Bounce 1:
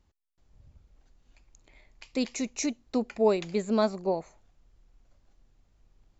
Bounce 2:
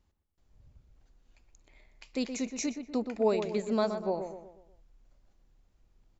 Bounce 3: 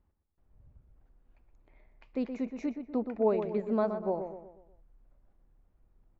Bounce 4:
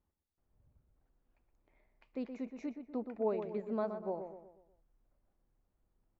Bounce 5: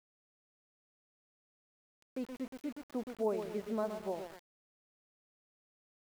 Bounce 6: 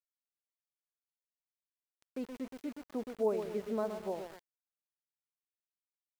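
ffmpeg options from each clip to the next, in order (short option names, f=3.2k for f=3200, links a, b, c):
-filter_complex "[0:a]asplit=2[a][b];[b]adelay=122,lowpass=f=2k:p=1,volume=-7.5dB,asplit=2[c][d];[d]adelay=122,lowpass=f=2k:p=1,volume=0.46,asplit=2[e][f];[f]adelay=122,lowpass=f=2k:p=1,volume=0.46,asplit=2[g][h];[h]adelay=122,lowpass=f=2k:p=1,volume=0.46,asplit=2[i][j];[j]adelay=122,lowpass=f=2k:p=1,volume=0.46[k];[a][c][e][g][i][k]amix=inputs=6:normalize=0,volume=-3.5dB"
-af "lowpass=1.5k"
-af "lowshelf=f=91:g=-7.5,volume=-6.5dB"
-af "aeval=exprs='val(0)*gte(abs(val(0)),0.00447)':c=same"
-af "adynamicequalizer=threshold=0.00501:dfrequency=450:dqfactor=5.8:tfrequency=450:tqfactor=5.8:attack=5:release=100:ratio=0.375:range=2:mode=boostabove:tftype=bell"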